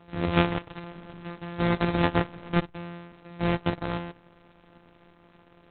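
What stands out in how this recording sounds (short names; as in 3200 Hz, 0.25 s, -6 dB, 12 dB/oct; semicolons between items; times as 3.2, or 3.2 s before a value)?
a buzz of ramps at a fixed pitch in blocks of 256 samples; Opus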